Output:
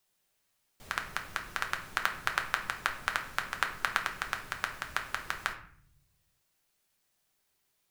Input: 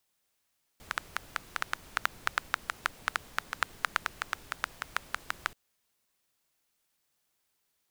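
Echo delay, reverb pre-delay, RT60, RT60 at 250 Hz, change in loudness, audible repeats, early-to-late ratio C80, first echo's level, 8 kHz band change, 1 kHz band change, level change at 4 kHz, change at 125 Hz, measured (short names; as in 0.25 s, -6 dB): none, 5 ms, 0.55 s, 1.1 s, +1.5 dB, none, 13.5 dB, none, +1.0 dB, +1.5 dB, +1.5 dB, +4.0 dB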